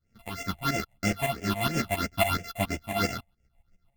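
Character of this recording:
a buzz of ramps at a fixed pitch in blocks of 64 samples
phaser sweep stages 6, 3 Hz, lowest notch 350–1,100 Hz
tremolo saw up 7.2 Hz, depth 85%
a shimmering, thickened sound

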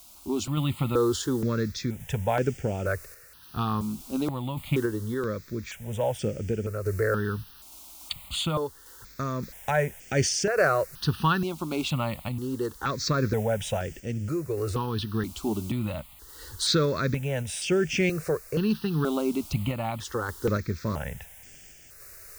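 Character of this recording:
a quantiser's noise floor 8 bits, dither triangular
sample-and-hold tremolo
notches that jump at a steady rate 2.1 Hz 480–4,000 Hz

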